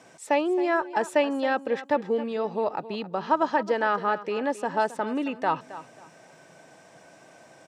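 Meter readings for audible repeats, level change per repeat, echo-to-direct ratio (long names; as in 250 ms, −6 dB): 2, −12.5 dB, −14.5 dB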